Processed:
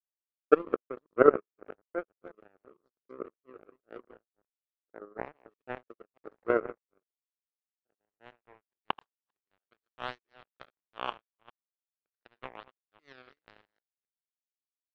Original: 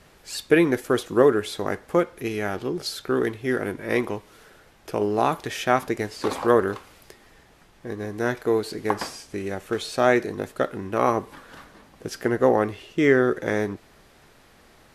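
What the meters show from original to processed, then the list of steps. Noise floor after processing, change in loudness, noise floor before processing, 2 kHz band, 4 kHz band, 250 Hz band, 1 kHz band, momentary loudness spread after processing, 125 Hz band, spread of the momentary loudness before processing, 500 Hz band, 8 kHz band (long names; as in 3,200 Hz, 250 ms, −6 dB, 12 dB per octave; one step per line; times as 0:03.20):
below −85 dBFS, −7.0 dB, −55 dBFS, −14.5 dB, −16.0 dB, −15.5 dB, −11.5 dB, 24 LU, −21.5 dB, 13 LU, −10.0 dB, below −40 dB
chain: delay that plays each chunk backwards 213 ms, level −6 dB
band-pass filter sweep 470 Hz → 1,100 Hz, 0:07.16–0:09.02
power curve on the samples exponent 3
level +5 dB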